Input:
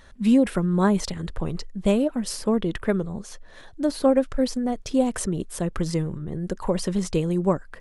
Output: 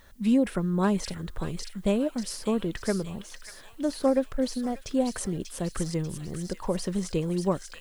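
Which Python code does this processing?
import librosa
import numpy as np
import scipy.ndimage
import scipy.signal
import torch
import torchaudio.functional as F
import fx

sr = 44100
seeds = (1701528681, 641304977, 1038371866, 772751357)

y = fx.dmg_noise_colour(x, sr, seeds[0], colour='blue', level_db=-63.0)
y = fx.echo_wet_highpass(y, sr, ms=590, feedback_pct=50, hz=2200.0, wet_db=-4.0)
y = y * 10.0 ** (-4.5 / 20.0)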